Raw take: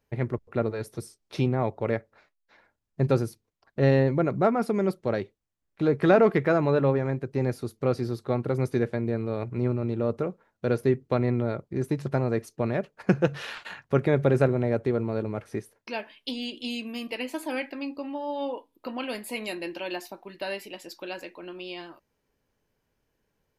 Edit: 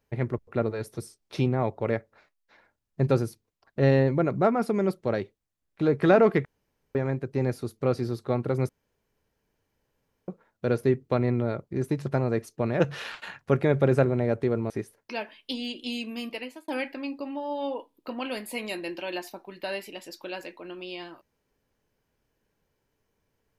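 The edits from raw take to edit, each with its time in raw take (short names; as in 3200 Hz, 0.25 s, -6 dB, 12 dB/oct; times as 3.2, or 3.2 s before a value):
6.45–6.95 room tone
8.69–10.28 room tone
12.8–13.23 cut
15.13–15.48 cut
17.05–17.46 fade out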